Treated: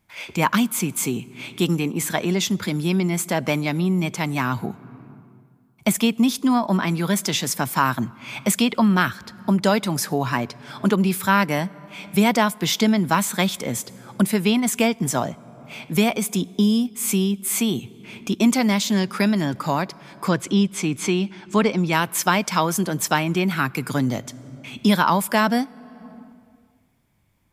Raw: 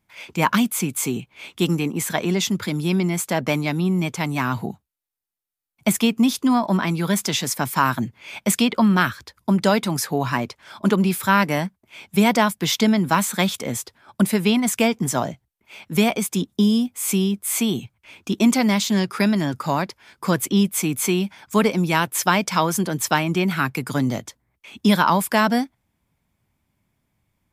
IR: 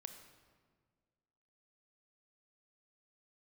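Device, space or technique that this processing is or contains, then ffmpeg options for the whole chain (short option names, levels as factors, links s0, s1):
ducked reverb: -filter_complex "[0:a]asettb=1/sr,asplit=3[s0][s1][s2];[s0]atrim=end=20.284[s3];[s1]atrim=start=20.28:end=21.93,asetpts=PTS-STARTPTS,afade=t=in:d=0.004:c=qsin,afade=t=out:st=1.646:d=0.004:c=qsin,lowpass=6200[s4];[s2]atrim=start=21.926[s5];[s3][s4]acrossfade=d=0.004:c1=hsin:c2=qsin[s6];[s6][s5]acrossfade=d=0.004:c1=qsin:c2=hsin,asplit=3[s7][s8][s9];[1:a]atrim=start_sample=2205[s10];[s8][s10]afir=irnorm=-1:irlink=0[s11];[s9]apad=whole_len=1214054[s12];[s11][s12]sidechaincompress=threshold=0.02:ratio=10:attack=22:release=416,volume=1.88[s13];[s7][s13]amix=inputs=2:normalize=0,volume=0.841"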